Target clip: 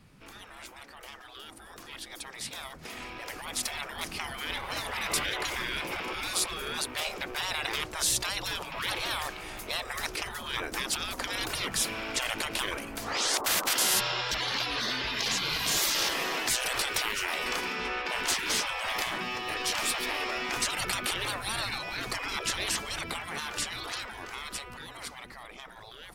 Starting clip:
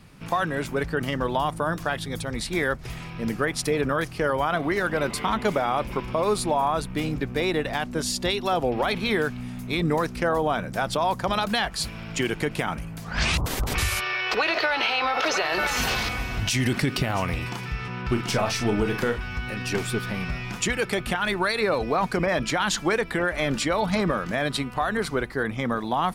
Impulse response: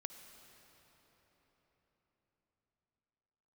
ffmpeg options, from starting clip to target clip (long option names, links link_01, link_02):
-filter_complex "[0:a]afftfilt=real='re*lt(hypot(re,im),0.0631)':imag='im*lt(hypot(re,im),0.0631)':win_size=1024:overlap=0.75,asplit=2[link_01][link_02];[link_02]asetrate=58866,aresample=44100,atempo=0.749154,volume=-17dB[link_03];[link_01][link_03]amix=inputs=2:normalize=0,dynaudnorm=framelen=780:gausssize=9:maxgain=14dB,volume=-7.5dB"